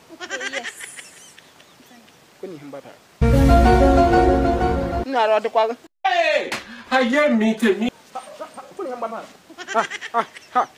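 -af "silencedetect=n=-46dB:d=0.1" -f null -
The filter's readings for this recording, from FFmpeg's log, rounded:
silence_start: 5.87
silence_end: 6.04 | silence_duration: 0.18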